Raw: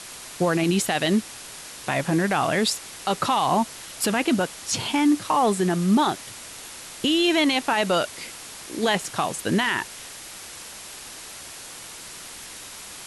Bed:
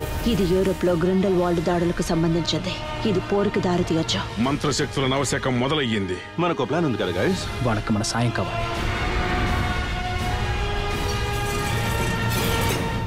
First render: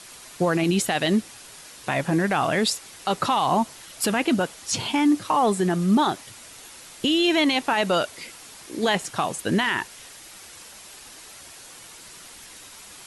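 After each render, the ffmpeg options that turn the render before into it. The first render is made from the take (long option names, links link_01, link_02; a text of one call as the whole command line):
ffmpeg -i in.wav -af "afftdn=noise_reduction=6:noise_floor=-40" out.wav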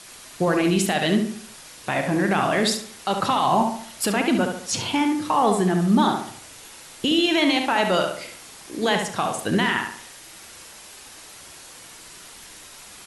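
ffmpeg -i in.wav -filter_complex "[0:a]asplit=2[link_01][link_02];[link_02]adelay=39,volume=-13dB[link_03];[link_01][link_03]amix=inputs=2:normalize=0,asplit=2[link_04][link_05];[link_05]adelay=70,lowpass=frequency=3200:poles=1,volume=-5dB,asplit=2[link_06][link_07];[link_07]adelay=70,lowpass=frequency=3200:poles=1,volume=0.43,asplit=2[link_08][link_09];[link_09]adelay=70,lowpass=frequency=3200:poles=1,volume=0.43,asplit=2[link_10][link_11];[link_11]adelay=70,lowpass=frequency=3200:poles=1,volume=0.43,asplit=2[link_12][link_13];[link_13]adelay=70,lowpass=frequency=3200:poles=1,volume=0.43[link_14];[link_04][link_06][link_08][link_10][link_12][link_14]amix=inputs=6:normalize=0" out.wav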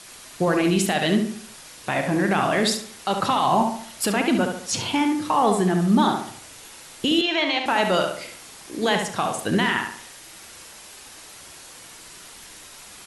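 ffmpeg -i in.wav -filter_complex "[0:a]asettb=1/sr,asplit=3[link_01][link_02][link_03];[link_01]atrim=end=7.214[link_04];[link_02]atrim=start=7.21:end=7.66,asetpts=PTS-STARTPTS,afade=type=in:duration=0.004:curve=qsin,afade=type=out:start_time=0.446:duration=0.004:curve=qsin,acrossover=split=380 5700:gain=0.158 1 0.0631[link_05][link_06][link_07];[link_05][link_06][link_07]amix=inputs=3:normalize=0[link_08];[link_03]atrim=start=7.656[link_09];[link_04][link_08]acrossfade=duration=0.004:curve1=hsin:curve2=qsin[link_10];[link_10][link_09]acrossfade=duration=0.004:curve1=qsin:curve2=hsin" out.wav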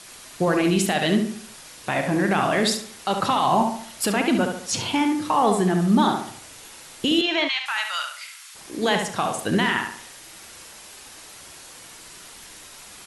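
ffmpeg -i in.wav -filter_complex "[0:a]asplit=3[link_01][link_02][link_03];[link_01]afade=type=out:start_time=7.47:duration=0.02[link_04];[link_02]highpass=frequency=1200:width=0.5412,highpass=frequency=1200:width=1.3066,afade=type=in:start_time=7.47:duration=0.02,afade=type=out:start_time=8.54:duration=0.02[link_05];[link_03]afade=type=in:start_time=8.54:duration=0.02[link_06];[link_04][link_05][link_06]amix=inputs=3:normalize=0" out.wav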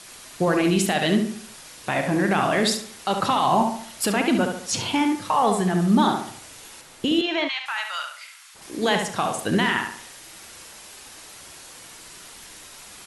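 ffmpeg -i in.wav -filter_complex "[0:a]asettb=1/sr,asplit=3[link_01][link_02][link_03];[link_01]atrim=end=5.154[link_04];[link_02]atrim=start=5.15:end=5.74,asetpts=PTS-STARTPTS,afade=type=in:duration=0.004:curve=qsin,afade=type=out:start_time=0.586:duration=0.004:curve=qsin,equalizer=frequency=310:width_type=o:width=0.34:gain=-14[link_05];[link_03]atrim=start=5.736[link_06];[link_04][link_05]acrossfade=duration=0.004:curve1=hsin:curve2=qsin[link_07];[link_07][link_06]acrossfade=duration=0.004:curve1=qsin:curve2=hsin,asettb=1/sr,asplit=3[link_08][link_09][link_10];[link_08]atrim=end=6.814[link_11];[link_09]atrim=start=6.81:end=8.62,asetpts=PTS-STARTPTS,afade=type=in:duration=0.004:curve=qsin,afade=type=out:start_time=1.806:duration=0.004:curve=qsin,highshelf=frequency=2100:gain=-5.5[link_12];[link_10]atrim=start=8.616[link_13];[link_11][link_12]acrossfade=duration=0.004:curve1=hsin:curve2=qsin[link_14];[link_14][link_13]acrossfade=duration=0.004:curve1=qsin:curve2=hsin" out.wav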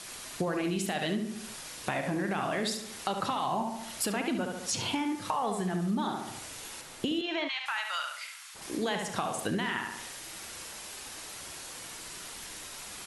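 ffmpeg -i in.wav -af "acompressor=threshold=-30dB:ratio=4" out.wav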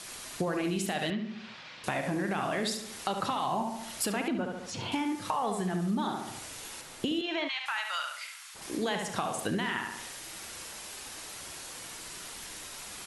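ffmpeg -i in.wav -filter_complex "[0:a]asettb=1/sr,asplit=3[link_01][link_02][link_03];[link_01]atrim=end=1.104[link_04];[link_02]atrim=start=1.1:end=1.84,asetpts=PTS-STARTPTS,afade=type=in:duration=0.004:curve=qsin,afade=type=out:start_time=0.736:duration=0.004:curve=qsin,highpass=120,equalizer=frequency=300:width_type=q:width=4:gain=-7,equalizer=frequency=430:width_type=q:width=4:gain=-7,equalizer=frequency=690:width_type=q:width=4:gain=-3,equalizer=frequency=2300:width_type=q:width=4:gain=3,lowpass=frequency=4100:width=0.5412,lowpass=frequency=4100:width=1.3066[link_05];[link_03]atrim=start=1.836[link_06];[link_04][link_05]acrossfade=duration=0.004:curve1=hsin:curve2=qsin[link_07];[link_07][link_06]acrossfade=duration=0.004:curve1=qsin:curve2=hsin,asettb=1/sr,asplit=3[link_08][link_09][link_10];[link_08]atrim=end=4.284[link_11];[link_09]atrim=start=4.28:end=4.92,asetpts=PTS-STARTPTS,afade=type=in:duration=0.004:curve=qsin,afade=type=out:start_time=0.636:duration=0.004:curve=qsin,aemphasis=mode=reproduction:type=75kf[link_12];[link_10]atrim=start=4.916[link_13];[link_11][link_12]acrossfade=duration=0.004:curve1=hsin:curve2=qsin[link_14];[link_14][link_13]acrossfade=duration=0.004:curve1=qsin:curve2=hsin" out.wav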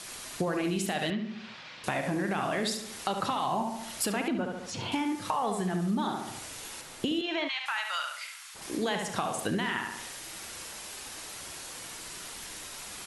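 ffmpeg -i in.wav -af "volume=1dB" out.wav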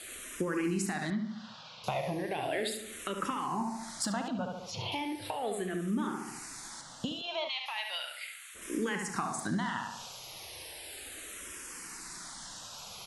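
ffmpeg -i in.wav -filter_complex "[0:a]asplit=2[link_01][link_02];[link_02]afreqshift=-0.36[link_03];[link_01][link_03]amix=inputs=2:normalize=1" out.wav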